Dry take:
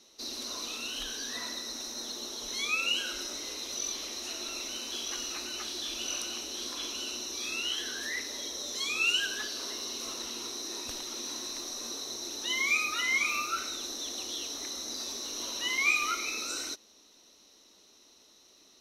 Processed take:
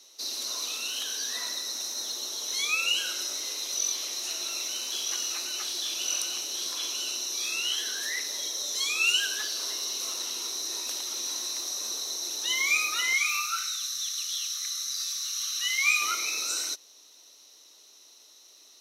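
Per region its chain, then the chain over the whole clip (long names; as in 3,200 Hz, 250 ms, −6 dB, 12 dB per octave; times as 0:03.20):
0:13.13–0:16.01: linear-phase brick-wall band-stop 240–1,100 Hz + parametric band 290 Hz −4.5 dB 1.2 octaves
whole clip: high-pass filter 420 Hz 12 dB per octave; high-shelf EQ 4,400 Hz +10 dB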